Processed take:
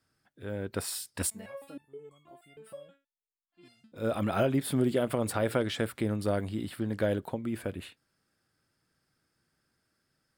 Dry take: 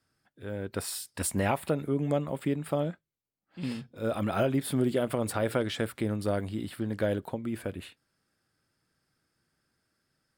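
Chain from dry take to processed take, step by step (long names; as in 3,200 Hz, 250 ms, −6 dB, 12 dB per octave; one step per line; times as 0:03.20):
0:01.30–0:03.92: step-sequenced resonator 6.3 Hz 220–1,100 Hz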